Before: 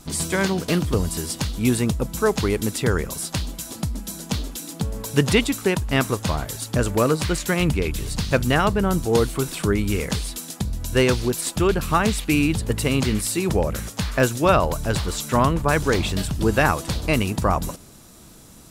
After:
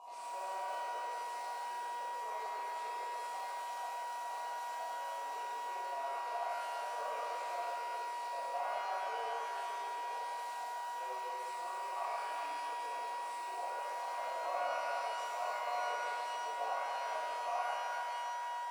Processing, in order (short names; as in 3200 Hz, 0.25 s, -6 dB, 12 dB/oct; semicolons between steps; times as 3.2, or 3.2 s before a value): compressor 6:1, threshold -31 dBFS, peak gain reduction 18 dB; HPF 540 Hz 24 dB/oct; high shelf 8200 Hz +8 dB; on a send: echo with dull and thin repeats by turns 0.135 s, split 1500 Hz, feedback 82%, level -7 dB; on the sum: whine 960 Hz -35 dBFS; band shelf 2100 Hz -11 dB; soft clip -34.5 dBFS, distortion -10 dB; vowel filter a; shimmer reverb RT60 2.1 s, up +12 st, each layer -8 dB, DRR -10.5 dB